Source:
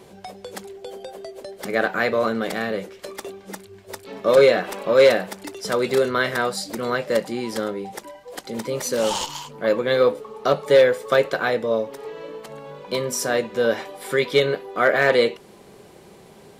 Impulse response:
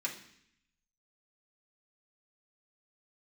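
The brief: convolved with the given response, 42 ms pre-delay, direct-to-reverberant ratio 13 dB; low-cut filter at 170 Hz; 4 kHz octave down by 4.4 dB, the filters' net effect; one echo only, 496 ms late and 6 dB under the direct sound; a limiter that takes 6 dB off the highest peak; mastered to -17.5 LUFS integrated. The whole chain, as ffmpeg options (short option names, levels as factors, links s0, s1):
-filter_complex "[0:a]highpass=170,equalizer=f=4000:t=o:g=-5.5,alimiter=limit=0.282:level=0:latency=1,aecho=1:1:496:0.501,asplit=2[s0][s1];[1:a]atrim=start_sample=2205,adelay=42[s2];[s1][s2]afir=irnorm=-1:irlink=0,volume=0.168[s3];[s0][s3]amix=inputs=2:normalize=0,volume=1.88"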